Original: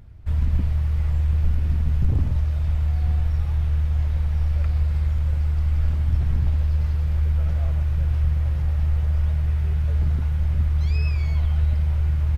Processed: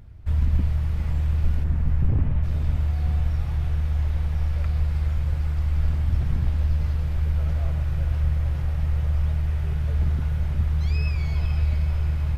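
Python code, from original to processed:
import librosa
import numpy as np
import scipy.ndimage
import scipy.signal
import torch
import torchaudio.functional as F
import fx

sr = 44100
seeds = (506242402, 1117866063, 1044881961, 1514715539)

y = fx.lowpass(x, sr, hz=fx.line((1.63, 1900.0), (2.42, 3000.0)), slope=24, at=(1.63, 2.42), fade=0.02)
y = fx.echo_diffused(y, sr, ms=482, feedback_pct=43, wet_db=-8)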